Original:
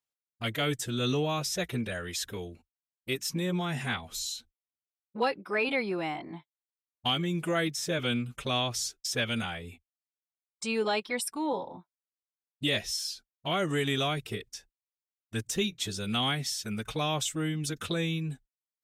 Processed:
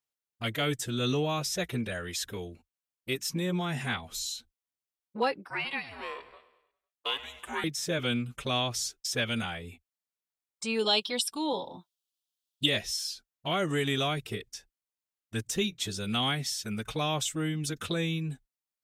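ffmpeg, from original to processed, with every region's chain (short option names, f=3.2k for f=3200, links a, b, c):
-filter_complex "[0:a]asettb=1/sr,asplit=3[a][b][c];[a]atrim=end=5.464[d];[b]atrim=start=5.46:end=7.64,asetpts=PTS-STARTPTS,afade=t=in:d=0.004:c=qsin,afade=t=out:st=2.176:d=0.004:c=qsin,highpass=f=610:w=0.5412,highpass=f=610:w=1.3066,aecho=1:1:100|200|300|400|500:0.158|0.0903|0.0515|0.0294|0.0167,atrim=end_sample=96138,aeval=exprs='val(0)*sin(2*PI*280*n/s)':c=same[e];[c]atrim=start=7.636[f];[d][e]acrossfade=d=0.004:c1=hsin:c2=qsin[g];[g][f]acrossfade=d=0.004:c1=qsin:c2=hsin,asettb=1/sr,asplit=3[h][i][j];[h]atrim=end=10.794[k];[i]atrim=start=10.79:end=12.66,asetpts=PTS-STARTPTS,afade=t=in:d=0.004:c=qsin,afade=t=out:st=1.866:d=0.004:c=qsin,acrossover=split=5400[l][m];[m]acompressor=threshold=-40dB:ratio=4:attack=1:release=60[n];[l][n]amix=inputs=2:normalize=0,highshelf=f=2.6k:t=q:w=3:g=7[o];[j]atrim=start=12.656[p];[k][o]acrossfade=d=0.004:c1=hsin:c2=qsin[q];[q][p]acrossfade=d=0.004:c1=qsin:c2=hsin"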